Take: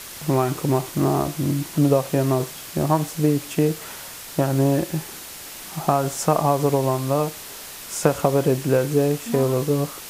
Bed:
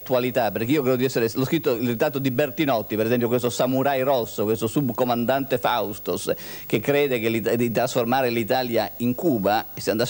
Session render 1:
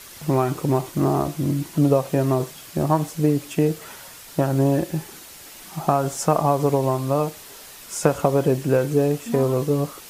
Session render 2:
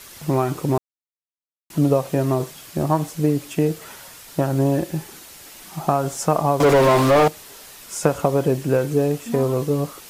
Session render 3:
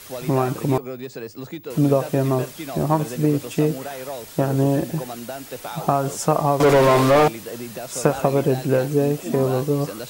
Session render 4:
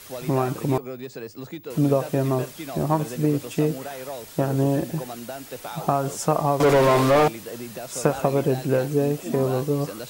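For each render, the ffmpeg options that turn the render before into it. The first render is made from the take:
-af "afftdn=nr=6:nf=-38"
-filter_complex "[0:a]asettb=1/sr,asplit=3[a][b][c];[a]atrim=end=6.604[d];[b]atrim=start=6.6:end=7.28,asetpts=PTS-STARTPTS,afade=t=in:d=0.004:c=qsin,afade=t=out:st=0.676:d=0.004:c=qsin,asplit=2[e][f];[f]highpass=f=720:p=1,volume=32dB,asoftclip=type=tanh:threshold=-6.5dB[g];[e][g]amix=inputs=2:normalize=0,lowpass=f=1.8k:p=1,volume=-6dB[h];[c]atrim=start=7.276[i];[d][h]acrossfade=d=0.004:c1=hsin:c2=qsin[j];[j][i]acrossfade=d=0.004:c1=qsin:c2=hsin,asplit=3[k][l][m];[k]atrim=end=0.78,asetpts=PTS-STARTPTS,afade=t=out:st=0.776:d=0.004:c=hsin[n];[l]atrim=start=0.78:end=1.7,asetpts=PTS-STARTPTS,volume=0[o];[m]atrim=start=1.7,asetpts=PTS-STARTPTS,afade=t=in:d=0.004:c=hsin[p];[n][o][p]concat=n=3:v=0:a=1"
-filter_complex "[1:a]volume=-11.5dB[a];[0:a][a]amix=inputs=2:normalize=0"
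-af "volume=-2.5dB"

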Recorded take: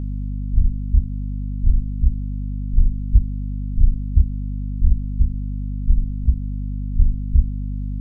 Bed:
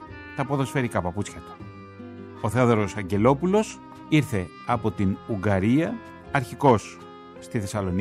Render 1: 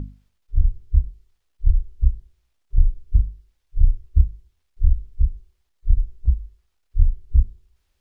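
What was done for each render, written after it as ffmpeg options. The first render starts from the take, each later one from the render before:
-af "bandreject=f=50:t=h:w=6,bandreject=f=100:t=h:w=6,bandreject=f=150:t=h:w=6,bandreject=f=200:t=h:w=6,bandreject=f=250:t=h:w=6"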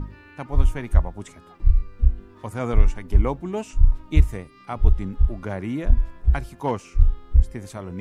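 -filter_complex "[1:a]volume=-7.5dB[a];[0:a][a]amix=inputs=2:normalize=0"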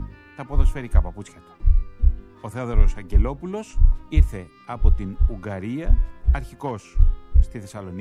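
-filter_complex "[0:a]acrossover=split=130[a][b];[b]acompressor=threshold=-24dB:ratio=6[c];[a][c]amix=inputs=2:normalize=0"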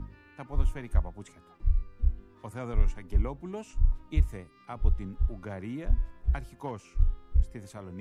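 -af "volume=-8.5dB"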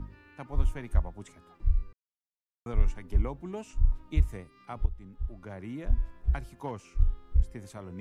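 -filter_complex "[0:a]asplit=4[a][b][c][d];[a]atrim=end=1.93,asetpts=PTS-STARTPTS,afade=t=out:st=1.926:d=0.004:c=hsin[e];[b]atrim=start=1.93:end=2.66,asetpts=PTS-STARTPTS,volume=0[f];[c]atrim=start=2.66:end=4.86,asetpts=PTS-STARTPTS,afade=t=in:d=0.004:c=hsin,afade=t=out:st=2.196:d=0.004:c=hsin:silence=0.177828[g];[d]atrim=start=4.86,asetpts=PTS-STARTPTS,afade=t=in:d=1.14:silence=0.177828[h];[e][f][g][h]concat=n=4:v=0:a=1"

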